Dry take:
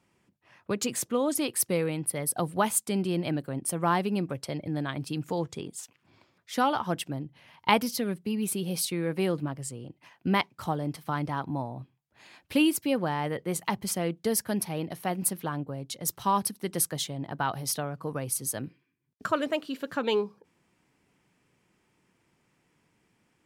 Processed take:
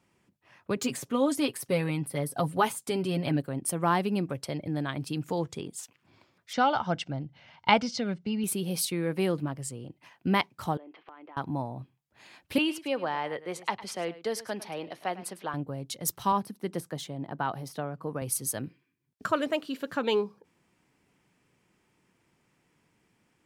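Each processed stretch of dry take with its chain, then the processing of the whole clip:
0:00.76–0:03.42: de-essing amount 60% + comb filter 7.3 ms, depth 62%
0:06.53–0:08.44: inverse Chebyshev low-pass filter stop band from 11,000 Hz + comb filter 1.4 ms, depth 37%
0:10.77–0:11.37: elliptic band-pass filter 320–2,900 Hz, stop band 50 dB + downward compressor 8 to 1, threshold −45 dBFS
0:12.58–0:15.54: low-pass filter 11,000 Hz + three-way crossover with the lows and the highs turned down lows −14 dB, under 360 Hz, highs −13 dB, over 5,500 Hz + single-tap delay 105 ms −16 dB
0:16.32–0:18.22: high-pass filter 130 Hz + de-essing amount 60% + high-shelf EQ 2,000 Hz −8 dB
whole clip: no processing

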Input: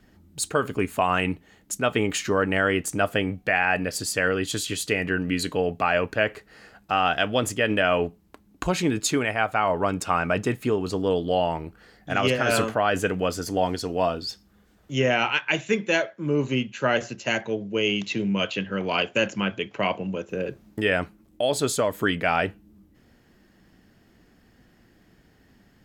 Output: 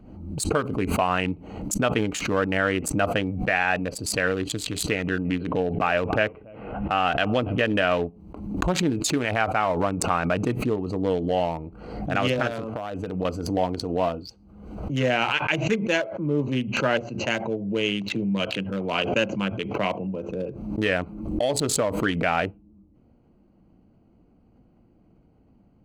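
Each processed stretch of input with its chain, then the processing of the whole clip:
0:04.96–0:07.65: Butterworth low-pass 3,300 Hz 48 dB per octave + single-tap delay 285 ms −20.5 dB
0:12.47–0:13.25: high-shelf EQ 7,600 Hz −10 dB + downward compressor 16 to 1, threshold −24 dBFS
whole clip: adaptive Wiener filter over 25 samples; notch filter 400 Hz, Q 12; background raised ahead of every attack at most 54 dB per second

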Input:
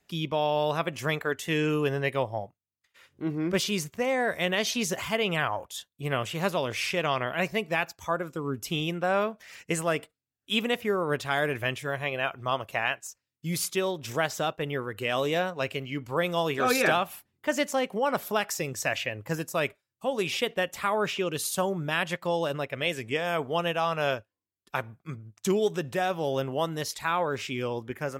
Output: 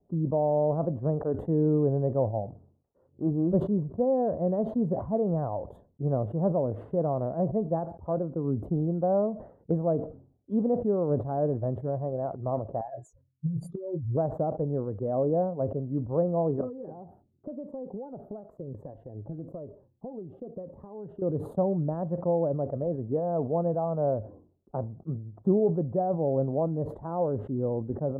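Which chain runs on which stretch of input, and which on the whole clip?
0:12.81–0:14.17: expanding power law on the bin magnitudes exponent 2.8 + double-tracking delay 24 ms −12 dB + compressor whose output falls as the input rises −32 dBFS, ratio −0.5
0:16.61–0:21.22: downward compressor 5 to 1, threshold −38 dBFS + phaser whose notches keep moving one way falling 1 Hz
whole clip: inverse Chebyshev low-pass filter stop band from 2,200 Hz, stop band 60 dB; dynamic equaliser 390 Hz, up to −5 dB, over −45 dBFS, Q 2.5; level that may fall only so fast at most 110 dB per second; level +5 dB

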